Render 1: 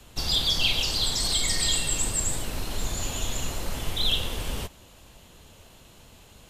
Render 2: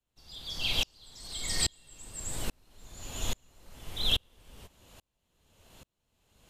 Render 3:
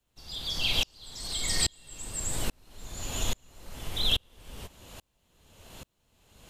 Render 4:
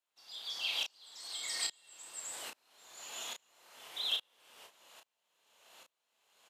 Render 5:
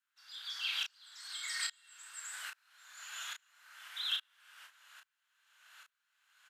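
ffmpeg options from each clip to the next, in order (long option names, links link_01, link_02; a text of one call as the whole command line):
ffmpeg -i in.wav -af "aeval=exprs='val(0)*pow(10,-38*if(lt(mod(-1.2*n/s,1),2*abs(-1.2)/1000),1-mod(-1.2*n/s,1)/(2*abs(-1.2)/1000),(mod(-1.2*n/s,1)-2*abs(-1.2)/1000)/(1-2*abs(-1.2)/1000))/20)':channel_layout=same" out.wav
ffmpeg -i in.wav -af "acompressor=threshold=-41dB:ratio=1.5,volume=8dB" out.wav
ffmpeg -i in.wav -filter_complex "[0:a]highpass=740,highshelf=frequency=5800:gain=-5,asplit=2[link_01][link_02];[link_02]adelay=32,volume=-5dB[link_03];[link_01][link_03]amix=inputs=2:normalize=0,volume=-7dB" out.wav
ffmpeg -i in.wav -af "highpass=frequency=1500:width_type=q:width=5,volume=-3dB" out.wav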